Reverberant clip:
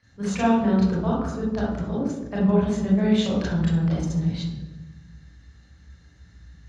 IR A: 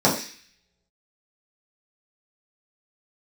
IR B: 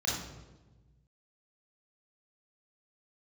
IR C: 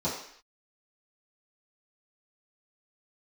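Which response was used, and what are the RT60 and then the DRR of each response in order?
B; 0.40 s, 1.2 s, non-exponential decay; −7.0, −5.0, −11.5 decibels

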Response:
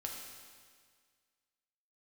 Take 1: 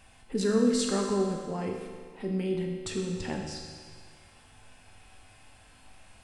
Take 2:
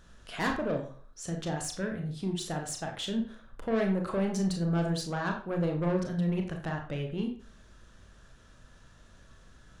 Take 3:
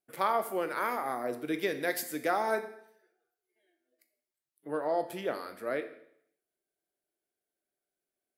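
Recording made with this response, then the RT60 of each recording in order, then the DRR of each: 1; 1.8, 0.45, 0.70 seconds; −0.5, 2.0, 8.0 decibels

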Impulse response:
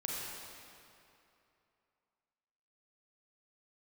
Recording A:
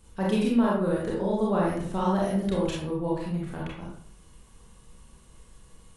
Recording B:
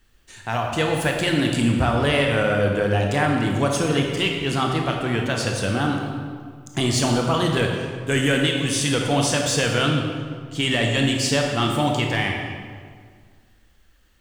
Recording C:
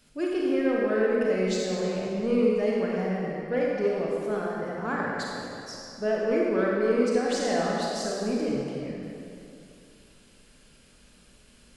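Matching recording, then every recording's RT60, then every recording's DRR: C; 0.55, 1.9, 2.8 seconds; −5.0, 0.5, −4.0 decibels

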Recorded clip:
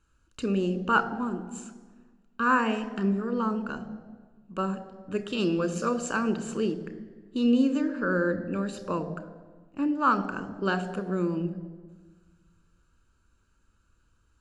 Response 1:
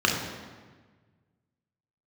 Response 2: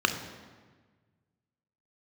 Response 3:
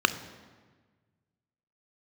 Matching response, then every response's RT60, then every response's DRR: 3; 1.4, 1.4, 1.4 seconds; −1.0, 6.0, 11.0 decibels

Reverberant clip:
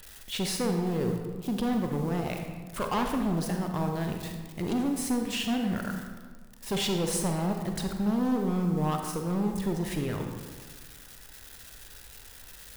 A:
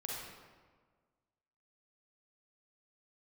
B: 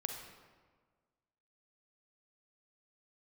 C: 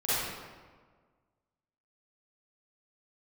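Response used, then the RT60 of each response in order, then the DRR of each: B; 1.6, 1.6, 1.6 seconds; −4.0, 3.5, −13.5 decibels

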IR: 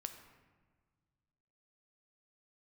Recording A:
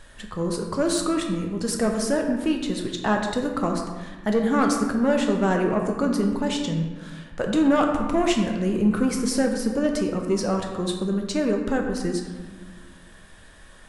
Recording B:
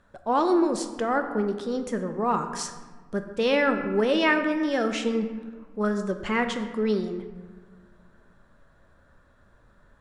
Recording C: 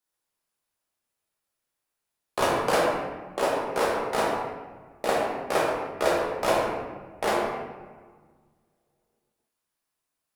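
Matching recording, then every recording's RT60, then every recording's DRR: B; 1.5, 1.6, 1.5 seconds; 2.0, 6.5, −5.0 decibels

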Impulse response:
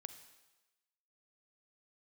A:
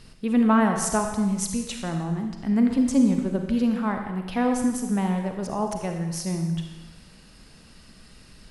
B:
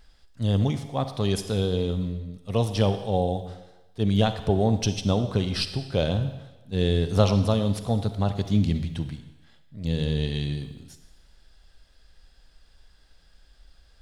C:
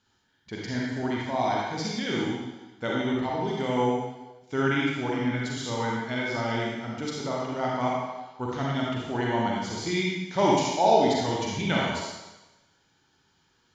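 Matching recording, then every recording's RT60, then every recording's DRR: B; 1.1, 1.1, 1.1 seconds; 4.0, 9.5, −4.0 decibels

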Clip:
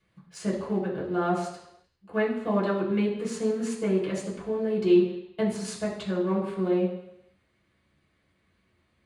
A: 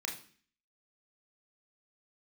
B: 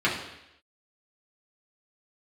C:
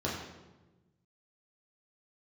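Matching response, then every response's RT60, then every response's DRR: B; 0.45, 0.85, 1.2 seconds; −0.5, −6.5, −6.5 decibels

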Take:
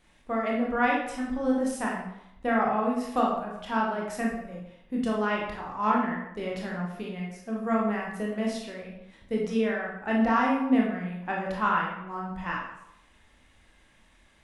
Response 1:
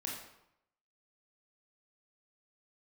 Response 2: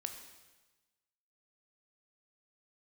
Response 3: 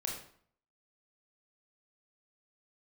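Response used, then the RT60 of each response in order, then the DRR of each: 1; 0.80, 1.2, 0.55 seconds; −3.0, 5.5, −1.0 decibels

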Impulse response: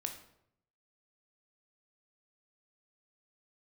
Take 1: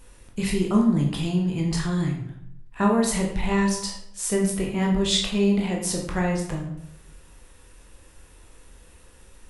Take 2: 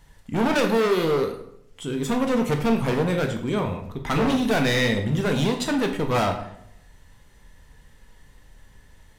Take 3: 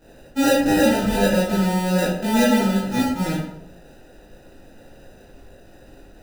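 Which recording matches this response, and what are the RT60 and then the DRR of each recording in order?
2; 0.75, 0.75, 0.75 seconds; −1.0, 4.0, −10.0 decibels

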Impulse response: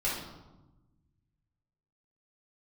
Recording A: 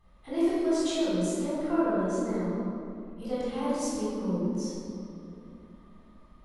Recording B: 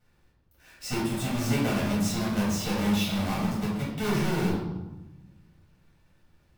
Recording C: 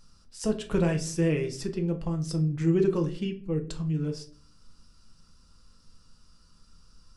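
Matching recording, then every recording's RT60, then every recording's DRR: B; 2.6, 1.1, 0.45 seconds; −10.0, −8.0, 3.5 decibels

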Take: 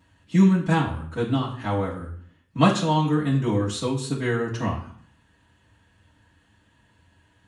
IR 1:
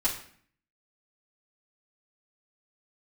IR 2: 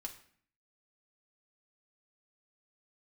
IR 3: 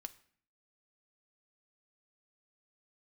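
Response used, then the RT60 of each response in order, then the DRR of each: 1; 0.55, 0.55, 0.55 seconds; −8.5, 1.5, 9.5 decibels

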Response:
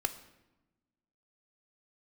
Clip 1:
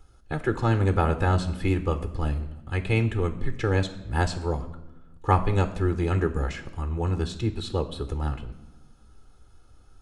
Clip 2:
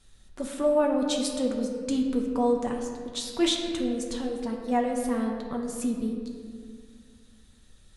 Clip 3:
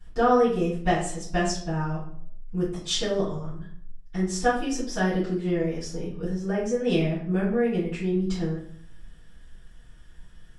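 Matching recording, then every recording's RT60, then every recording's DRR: 1; 1.0, 2.0, 0.60 seconds; 9.5, 0.5, −13.0 decibels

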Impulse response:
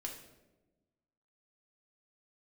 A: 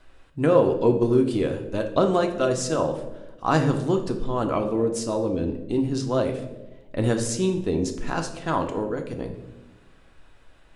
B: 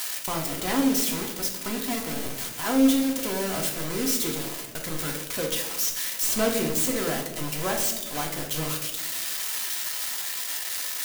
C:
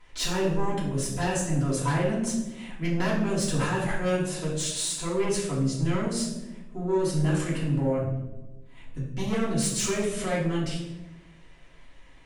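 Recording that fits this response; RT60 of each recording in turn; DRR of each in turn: B; 1.1, 1.1, 1.1 seconds; 4.0, −0.5, −8.0 decibels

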